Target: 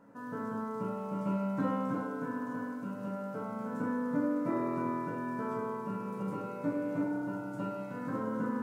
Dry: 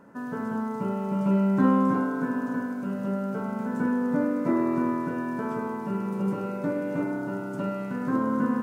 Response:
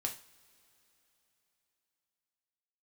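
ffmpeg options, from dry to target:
-filter_complex "[0:a]equalizer=frequency=580:width=1.5:gain=2[link_01];[1:a]atrim=start_sample=2205[link_02];[link_01][link_02]afir=irnorm=-1:irlink=0,volume=-7.5dB"

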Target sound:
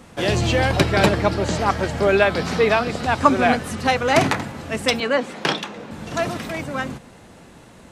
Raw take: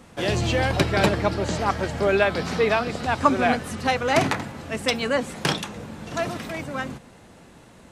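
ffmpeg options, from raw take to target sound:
ffmpeg -i in.wav -filter_complex "[0:a]asettb=1/sr,asplit=3[link_01][link_02][link_03];[link_01]atrim=end=5.004[link_04];[link_02]atrim=start=5:end=5.91,asetpts=PTS-STARTPTS,afade=type=in:duration=0.004:curve=qsin,afade=type=out:start_time=0.906:duration=0.004:curve=qsin,acrossover=split=190 5400:gain=0.141 1 0.251[link_05][link_06][link_07];[link_05][link_06][link_07]amix=inputs=3:normalize=0[link_08];[link_03]atrim=start=5.906[link_09];[link_04][link_08]acrossfade=duration=0.004:curve1=hsin:curve2=qsin[link_10];[link_10][link_09]acrossfade=duration=0.004:curve1=qsin:curve2=hsin,volume=3.5dB" out.wav

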